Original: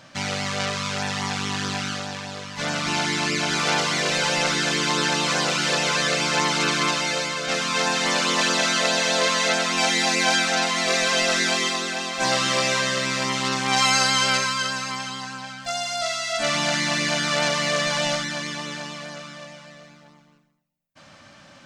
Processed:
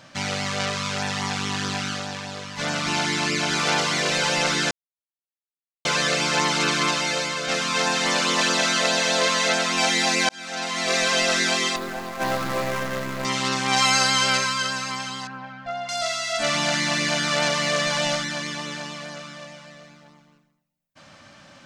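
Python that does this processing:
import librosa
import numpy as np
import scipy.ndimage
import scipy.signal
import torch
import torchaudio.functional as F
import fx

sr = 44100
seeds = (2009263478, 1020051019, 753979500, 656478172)

y = fx.median_filter(x, sr, points=15, at=(11.76, 13.25))
y = fx.lowpass(y, sr, hz=1700.0, slope=12, at=(15.27, 15.89))
y = fx.edit(y, sr, fx.silence(start_s=4.71, length_s=1.14),
    fx.fade_in_span(start_s=10.29, length_s=0.69), tone=tone)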